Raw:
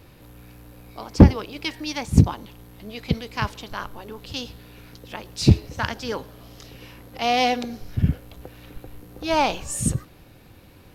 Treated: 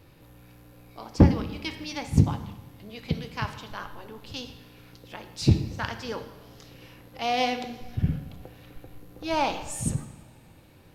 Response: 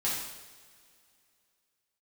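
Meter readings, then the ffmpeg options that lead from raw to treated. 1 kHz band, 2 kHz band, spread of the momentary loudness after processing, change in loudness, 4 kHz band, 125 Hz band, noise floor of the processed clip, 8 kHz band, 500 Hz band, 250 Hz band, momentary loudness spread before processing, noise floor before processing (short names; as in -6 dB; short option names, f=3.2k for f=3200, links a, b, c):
-5.0 dB, -5.0 dB, 21 LU, -5.0 dB, -5.5 dB, -4.5 dB, -54 dBFS, -6.5 dB, -5.0 dB, -5.0 dB, 20 LU, -49 dBFS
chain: -filter_complex "[0:a]asplit=2[a][b];[1:a]atrim=start_sample=2205,highshelf=f=7.7k:g=-11.5[c];[b][c]afir=irnorm=-1:irlink=0,volume=-11dB[d];[a][d]amix=inputs=2:normalize=0,volume=-7.5dB"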